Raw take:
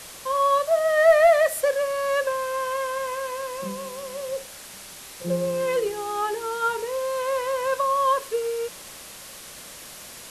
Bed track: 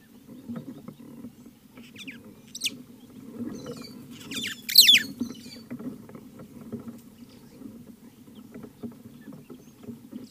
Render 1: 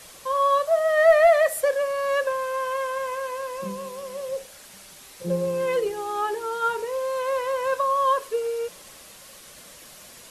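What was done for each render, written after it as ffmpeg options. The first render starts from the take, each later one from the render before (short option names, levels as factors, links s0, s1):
-af "afftdn=nr=6:nf=-42"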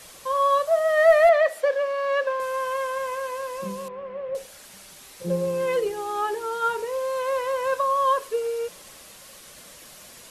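-filter_complex "[0:a]asettb=1/sr,asplit=3[s0][s1][s2];[s0]atrim=end=1.294[s3];[s1]atrim=start=1.29:end=2.4,asetpts=PTS-STARTPTS,afade=t=in:d=0.004:c=qsin,afade=t=out:st=1.106:d=0.004:c=qsin,acrossover=split=210 5100:gain=0.0708 1 0.158[s4][s5][s6];[s4][s5][s6]amix=inputs=3:normalize=0[s7];[s2]atrim=start=2.396[s8];[s3][s7]acrossfade=d=0.004:c1=hsin:c2=qsin[s9];[s9][s8]acrossfade=d=0.004:c1=qsin:c2=hsin,asettb=1/sr,asplit=3[s10][s11][s12];[s10]atrim=end=3.884[s13];[s11]atrim=start=3.88:end=4.35,asetpts=PTS-STARTPTS,afade=t=in:d=0.004:c=qsin,afade=t=out:st=0.466:d=0.004:c=qsin,lowpass=f=2300:w=0.5412,lowpass=f=2300:w=1.3066[s14];[s12]atrim=start=4.346[s15];[s13][s14]acrossfade=d=0.004:c1=hsin:c2=qsin[s16];[s16][s15]acrossfade=d=0.004:c1=qsin:c2=hsin"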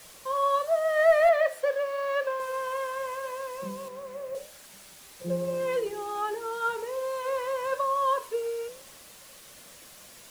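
-af "acrusher=bits=7:mix=0:aa=0.000001,flanger=delay=8.9:depth=4.5:regen=-85:speed=0.89:shape=triangular"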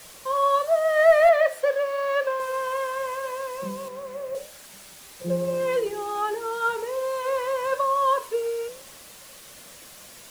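-af "volume=1.58"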